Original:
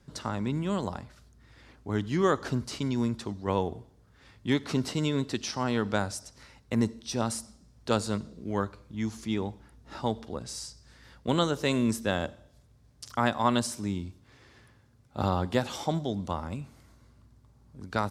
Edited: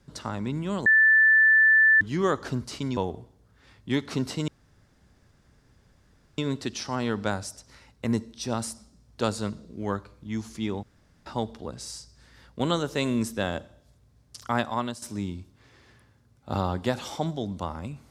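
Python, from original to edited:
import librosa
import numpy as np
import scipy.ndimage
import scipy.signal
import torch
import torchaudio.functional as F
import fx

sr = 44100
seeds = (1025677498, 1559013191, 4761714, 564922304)

y = fx.edit(x, sr, fx.bleep(start_s=0.86, length_s=1.15, hz=1760.0, db=-14.5),
    fx.cut(start_s=2.97, length_s=0.58),
    fx.insert_room_tone(at_s=5.06, length_s=1.9),
    fx.room_tone_fill(start_s=9.51, length_s=0.43),
    fx.fade_out_to(start_s=13.28, length_s=0.42, floor_db=-13.5), tone=tone)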